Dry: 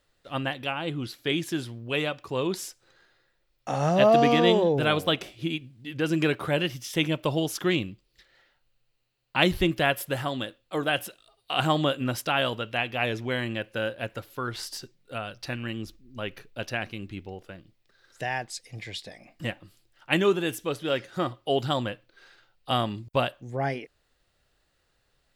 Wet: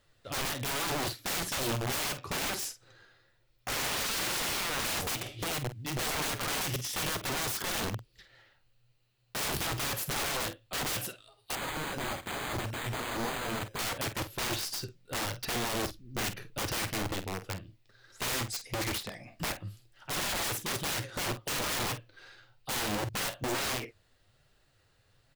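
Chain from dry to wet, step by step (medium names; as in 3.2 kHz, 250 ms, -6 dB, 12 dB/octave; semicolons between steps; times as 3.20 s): peaking EQ 110 Hz +11.5 dB 0.56 oct; peak limiter -18 dBFS, peak gain reduction 10 dB; flange 1.1 Hz, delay 4.4 ms, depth 8.5 ms, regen +53%; integer overflow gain 33.5 dB; doubling 48 ms -11.5 dB; 11.55–13.79 s: careless resampling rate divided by 8×, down filtered, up hold; trim +5.5 dB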